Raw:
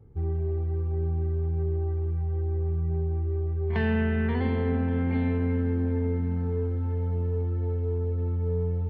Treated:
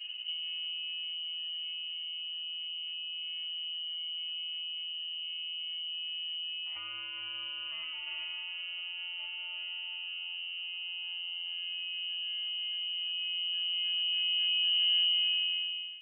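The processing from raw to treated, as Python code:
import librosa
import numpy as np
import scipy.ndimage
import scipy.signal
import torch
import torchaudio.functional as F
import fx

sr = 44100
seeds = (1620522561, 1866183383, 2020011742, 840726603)

p1 = fx.fade_out_tail(x, sr, length_s=2.51)
p2 = p1 + fx.echo_single(p1, sr, ms=229, db=-12.5, dry=0)
p3 = fx.rev_spring(p2, sr, rt60_s=2.5, pass_ms=(47, 53), chirp_ms=80, drr_db=15.0)
p4 = fx.freq_invert(p3, sr, carrier_hz=3000)
p5 = fx.over_compress(p4, sr, threshold_db=-37.0, ratio=-1.0)
y = fx.stretch_vocoder(p5, sr, factor=1.8)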